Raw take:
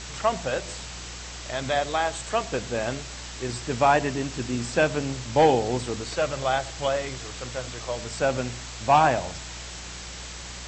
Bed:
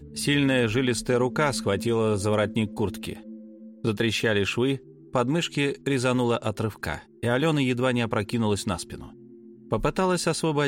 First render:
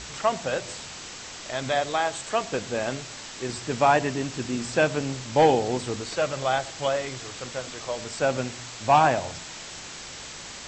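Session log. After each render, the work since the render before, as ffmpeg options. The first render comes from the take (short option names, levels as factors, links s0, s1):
-af "bandreject=f=60:t=h:w=4,bandreject=f=120:t=h:w=4,bandreject=f=180:t=h:w=4"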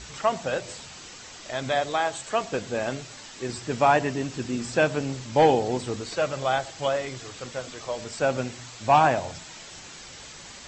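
-af "afftdn=nr=6:nf=-40"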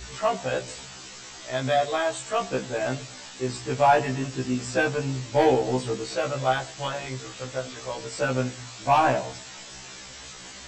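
-filter_complex "[0:a]asplit=2[s0][s1];[s1]asoftclip=type=hard:threshold=0.0631,volume=0.473[s2];[s0][s2]amix=inputs=2:normalize=0,afftfilt=real='re*1.73*eq(mod(b,3),0)':imag='im*1.73*eq(mod(b,3),0)':win_size=2048:overlap=0.75"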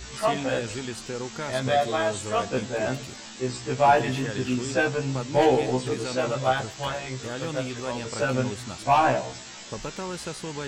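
-filter_complex "[1:a]volume=0.299[s0];[0:a][s0]amix=inputs=2:normalize=0"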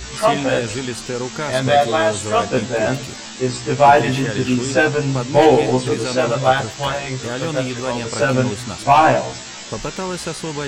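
-af "volume=2.66,alimiter=limit=0.891:level=0:latency=1"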